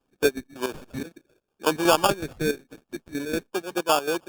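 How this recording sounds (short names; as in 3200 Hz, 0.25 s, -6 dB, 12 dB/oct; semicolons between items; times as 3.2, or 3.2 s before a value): aliases and images of a low sample rate 2000 Hz, jitter 0%; chopped level 5.4 Hz, depth 65%, duty 55%; Opus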